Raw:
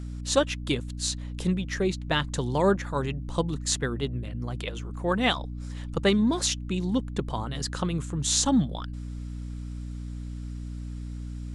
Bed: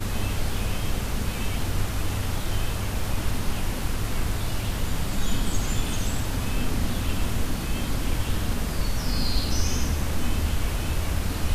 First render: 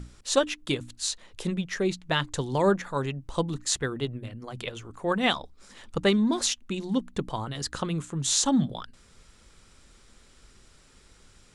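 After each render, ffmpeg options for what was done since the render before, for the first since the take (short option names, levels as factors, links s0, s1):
-af "bandreject=f=60:t=h:w=6,bandreject=f=120:t=h:w=6,bandreject=f=180:t=h:w=6,bandreject=f=240:t=h:w=6,bandreject=f=300:t=h:w=6"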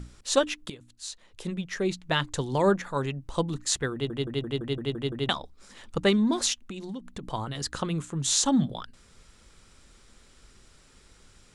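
-filter_complex "[0:a]asettb=1/sr,asplit=3[s0][s1][s2];[s0]atrim=end=6.584[s3];[s1]atrim=start=6.58:end=7.23,asetpts=PTS-STARTPTS,afade=t=in:d=0.004:c=qsin,afade=t=out:st=0.646:d=0.004:c=qsin,acompressor=threshold=0.0224:ratio=12:attack=3.2:release=140:knee=1:detection=peak[s4];[s2]atrim=start=7.226[s5];[s3][s4]acrossfade=d=0.004:c1=hsin:c2=qsin[s6];[s6][s5]acrossfade=d=0.004:c1=qsin:c2=hsin,asplit=10[s7][s8][s9][s10][s11][s12][s13][s14][s15][s16];[s7]atrim=end=0.7,asetpts=PTS-STARTPTS,afade=t=out:st=0.696:d=0.004:c=hsin:silence=0.133352[s17];[s8]atrim=start=0.7:end=4.102,asetpts=PTS-STARTPTS,afade=t=in:d=1.34:silence=0.133352[s18];[s9]atrim=start=3.928:end=4.102[s19];[s10]atrim=start=3.928:end=4.102[s20];[s11]atrim=start=3.928:end=4.102[s21];[s12]atrim=start=3.928:end=4.102[s22];[s13]atrim=start=3.928:end=4.102[s23];[s14]atrim=start=3.928:end=4.102[s24];[s15]atrim=start=3.928:end=4.102[s25];[s16]atrim=start=5.288[s26];[s17][s18]concat=n=2:v=0:a=1[s27];[s27][s19]acrossfade=d=0.004:c1=hsin:c2=hsin[s28];[s28][s20]acrossfade=d=0.004:c1=hsin:c2=hsin[s29];[s29][s21]acrossfade=d=0.004:c1=hsin:c2=hsin[s30];[s30][s22]acrossfade=d=0.004:c1=hsin:c2=hsin[s31];[s31][s23]acrossfade=d=0.004:c1=hsin:c2=hsin[s32];[s32][s24]acrossfade=d=0.004:c1=hsin:c2=hsin[s33];[s33][s25]acrossfade=d=0.004:c1=hsin:c2=hsin[s34];[s34][s26]acrossfade=d=0.004:c1=hsin:c2=hsin"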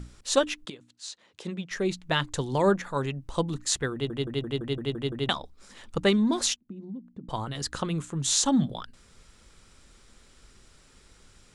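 -filter_complex "[0:a]asettb=1/sr,asplit=3[s0][s1][s2];[s0]atrim=end=0.654[s3];[s1]atrim=start=0.65:end=1.71,asetpts=PTS-STARTPTS,afade=t=in:d=0.004:c=qsin,afade=t=out:st=1.056:d=0.004:c=qsin,highpass=170,lowpass=7300[s4];[s2]atrim=start=1.706[s5];[s3][s4]acrossfade=d=0.004:c1=hsin:c2=qsin[s6];[s6][s5]acrossfade=d=0.004:c1=qsin:c2=hsin,asettb=1/sr,asplit=3[s7][s8][s9];[s7]atrim=end=6.564[s10];[s8]atrim=start=6.56:end=7.29,asetpts=PTS-STARTPTS,afade=t=in:d=0.004:c=qsin,afade=t=out:st=0.726:d=0.004:c=qsin,bandpass=f=220:t=q:w=1.6[s11];[s9]atrim=start=7.286[s12];[s10][s11]acrossfade=d=0.004:c1=hsin:c2=qsin[s13];[s13][s12]acrossfade=d=0.004:c1=qsin:c2=hsin"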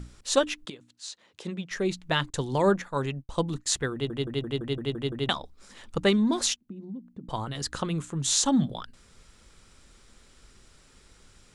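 -filter_complex "[0:a]asettb=1/sr,asplit=3[s0][s1][s2];[s0]atrim=end=2.304[s3];[s1]atrim=start=2.3:end=3.66,asetpts=PTS-STARTPTS,afade=t=in:d=0.004:c=qsin,afade=t=out:st=1.356:d=0.004:c=qsin,agate=range=0.0224:threshold=0.0158:ratio=3:release=100:detection=peak[s4];[s2]atrim=start=3.656[s5];[s3][s4]acrossfade=d=0.004:c1=hsin:c2=qsin[s6];[s6][s5]acrossfade=d=0.004:c1=qsin:c2=hsin"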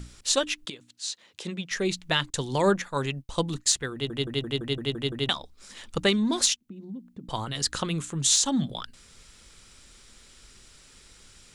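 -filter_complex "[0:a]acrossover=split=2000[s0][s1];[s1]acontrast=78[s2];[s0][s2]amix=inputs=2:normalize=0,alimiter=limit=0.316:level=0:latency=1:release=466"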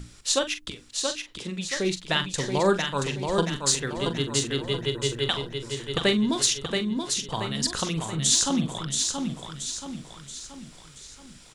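-filter_complex "[0:a]asplit=2[s0][s1];[s1]adelay=43,volume=0.299[s2];[s0][s2]amix=inputs=2:normalize=0,aecho=1:1:678|1356|2034|2712|3390|4068:0.562|0.259|0.119|0.0547|0.0252|0.0116"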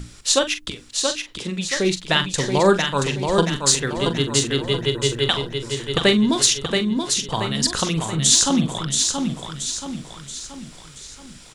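-af "volume=2"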